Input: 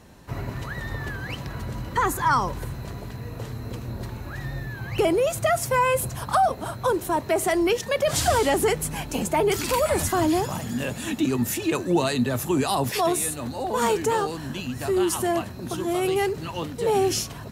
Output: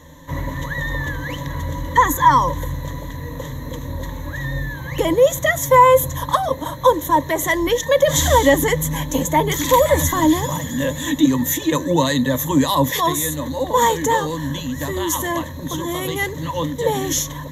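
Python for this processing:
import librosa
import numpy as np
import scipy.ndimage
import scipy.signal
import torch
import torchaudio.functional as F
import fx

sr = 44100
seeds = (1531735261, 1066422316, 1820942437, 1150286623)

y = fx.ripple_eq(x, sr, per_octave=1.1, db=17)
y = y * librosa.db_to_amplitude(3.0)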